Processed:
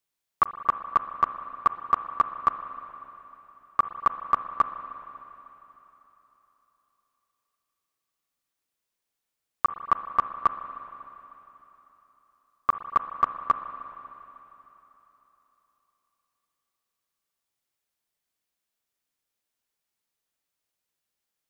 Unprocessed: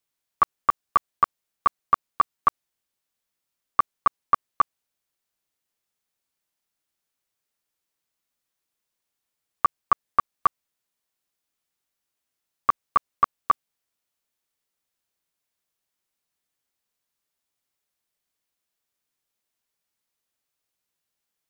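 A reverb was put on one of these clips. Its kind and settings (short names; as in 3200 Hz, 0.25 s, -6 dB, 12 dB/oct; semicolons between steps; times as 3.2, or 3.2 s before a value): spring tank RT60 3.5 s, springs 38/60 ms, chirp 70 ms, DRR 9 dB; gain -2 dB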